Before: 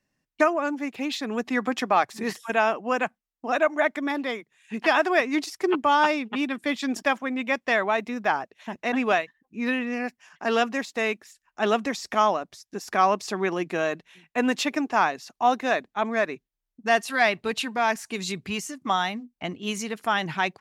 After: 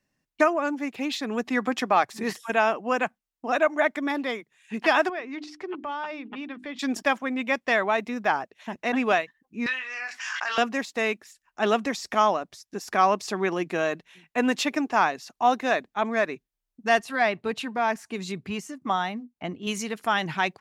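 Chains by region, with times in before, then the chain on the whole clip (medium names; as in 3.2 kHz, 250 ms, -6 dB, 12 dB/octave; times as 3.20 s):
5.09–6.79 s: low-pass 3.8 kHz + hum notches 50/100/150/200/250/300/350 Hz + compression 2:1, threshold -39 dBFS
9.66–10.58 s: Chebyshev band-pass 1.3–6.5 kHz + doubling 23 ms -6 dB + swell ahead of each attack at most 24 dB/s
16.99–19.67 s: high-pass 62 Hz + treble shelf 2.2 kHz -8.5 dB
whole clip: none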